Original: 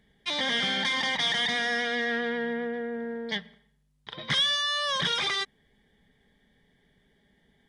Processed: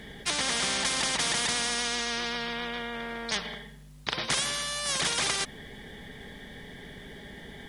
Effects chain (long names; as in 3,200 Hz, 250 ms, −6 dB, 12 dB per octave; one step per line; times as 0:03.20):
every bin compressed towards the loudest bin 4 to 1
level +3 dB